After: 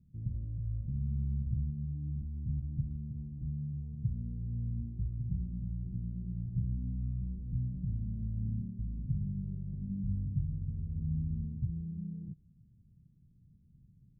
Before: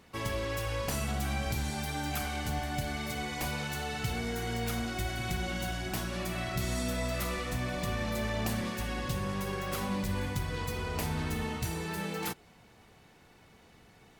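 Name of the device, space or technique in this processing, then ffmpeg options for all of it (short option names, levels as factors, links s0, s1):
the neighbour's flat through the wall: -af "lowpass=f=180:w=0.5412,lowpass=f=180:w=1.3066,equalizer=f=140:t=o:w=0.65:g=4.5"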